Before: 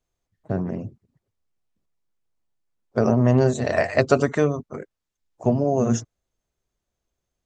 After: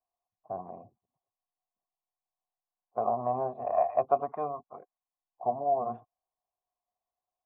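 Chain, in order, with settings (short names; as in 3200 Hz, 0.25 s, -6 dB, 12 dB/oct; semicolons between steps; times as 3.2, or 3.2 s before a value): vocal tract filter a; low shelf 220 Hz -5 dB; gain +6 dB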